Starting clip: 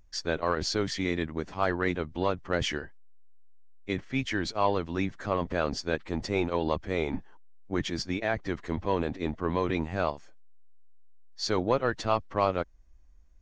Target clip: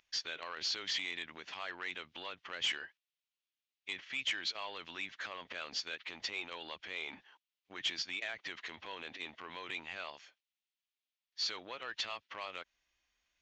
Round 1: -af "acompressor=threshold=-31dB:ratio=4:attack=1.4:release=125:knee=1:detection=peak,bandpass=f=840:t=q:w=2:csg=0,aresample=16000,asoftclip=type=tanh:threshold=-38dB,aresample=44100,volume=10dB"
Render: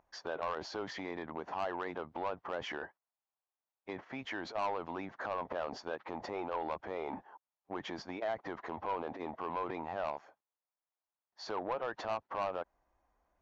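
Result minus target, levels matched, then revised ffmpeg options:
4000 Hz band -12.5 dB
-af "acompressor=threshold=-31dB:ratio=4:attack=1.4:release=125:knee=1:detection=peak,bandpass=f=3k:t=q:w=2:csg=0,aresample=16000,asoftclip=type=tanh:threshold=-38dB,aresample=44100,volume=10dB"

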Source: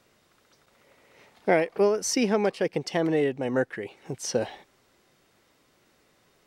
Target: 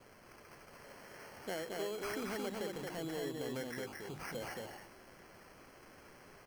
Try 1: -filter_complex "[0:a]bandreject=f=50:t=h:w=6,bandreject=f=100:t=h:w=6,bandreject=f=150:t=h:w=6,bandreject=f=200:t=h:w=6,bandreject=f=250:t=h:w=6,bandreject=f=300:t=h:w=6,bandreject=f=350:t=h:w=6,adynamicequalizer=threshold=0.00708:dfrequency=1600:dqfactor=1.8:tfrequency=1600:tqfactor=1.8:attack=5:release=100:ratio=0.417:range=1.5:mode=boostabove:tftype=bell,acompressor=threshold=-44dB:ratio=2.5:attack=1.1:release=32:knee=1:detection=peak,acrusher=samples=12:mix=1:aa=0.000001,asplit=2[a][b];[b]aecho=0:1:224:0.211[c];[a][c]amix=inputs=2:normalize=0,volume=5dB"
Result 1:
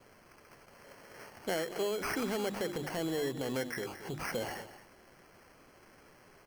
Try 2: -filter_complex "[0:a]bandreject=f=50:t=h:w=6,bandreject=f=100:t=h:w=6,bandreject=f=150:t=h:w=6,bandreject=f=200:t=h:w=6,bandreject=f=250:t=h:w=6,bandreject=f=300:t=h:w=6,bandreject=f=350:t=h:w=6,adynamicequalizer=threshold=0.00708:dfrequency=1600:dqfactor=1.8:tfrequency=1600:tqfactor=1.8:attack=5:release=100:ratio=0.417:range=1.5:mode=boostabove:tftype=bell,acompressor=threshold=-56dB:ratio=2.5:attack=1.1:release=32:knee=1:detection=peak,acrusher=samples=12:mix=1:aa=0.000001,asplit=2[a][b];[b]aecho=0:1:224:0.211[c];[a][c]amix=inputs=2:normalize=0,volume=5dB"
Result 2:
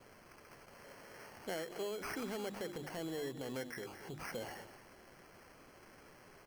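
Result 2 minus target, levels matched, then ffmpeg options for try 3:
echo-to-direct -10.5 dB
-filter_complex "[0:a]bandreject=f=50:t=h:w=6,bandreject=f=100:t=h:w=6,bandreject=f=150:t=h:w=6,bandreject=f=200:t=h:w=6,bandreject=f=250:t=h:w=6,bandreject=f=300:t=h:w=6,bandreject=f=350:t=h:w=6,adynamicequalizer=threshold=0.00708:dfrequency=1600:dqfactor=1.8:tfrequency=1600:tqfactor=1.8:attack=5:release=100:ratio=0.417:range=1.5:mode=boostabove:tftype=bell,acompressor=threshold=-56dB:ratio=2.5:attack=1.1:release=32:knee=1:detection=peak,acrusher=samples=12:mix=1:aa=0.000001,asplit=2[a][b];[b]aecho=0:1:224:0.708[c];[a][c]amix=inputs=2:normalize=0,volume=5dB"

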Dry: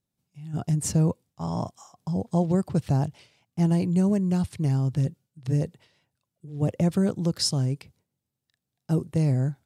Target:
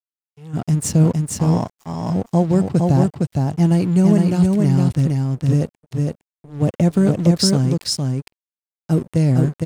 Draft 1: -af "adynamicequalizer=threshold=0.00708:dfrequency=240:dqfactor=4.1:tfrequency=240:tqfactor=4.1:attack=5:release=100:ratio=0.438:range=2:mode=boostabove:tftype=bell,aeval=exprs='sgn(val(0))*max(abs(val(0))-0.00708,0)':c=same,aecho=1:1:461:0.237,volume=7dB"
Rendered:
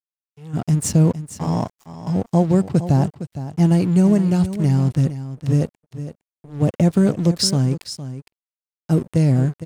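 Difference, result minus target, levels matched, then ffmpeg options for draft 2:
echo-to-direct -9.5 dB
-af "adynamicequalizer=threshold=0.00708:dfrequency=240:dqfactor=4.1:tfrequency=240:tqfactor=4.1:attack=5:release=100:ratio=0.438:range=2:mode=boostabove:tftype=bell,aeval=exprs='sgn(val(0))*max(abs(val(0))-0.00708,0)':c=same,aecho=1:1:461:0.708,volume=7dB"

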